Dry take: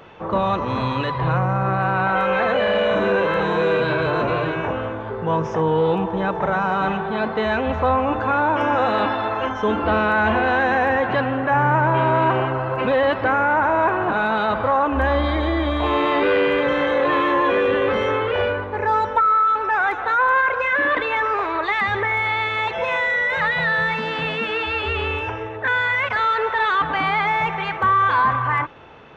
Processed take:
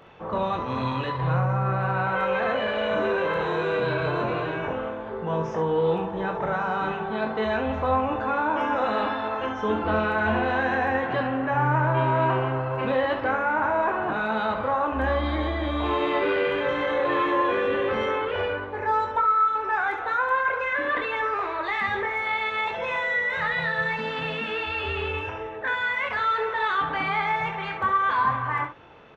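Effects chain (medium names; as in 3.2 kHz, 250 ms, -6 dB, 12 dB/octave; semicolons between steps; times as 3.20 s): early reflections 23 ms -6 dB, 68 ms -8.5 dB; trim -7 dB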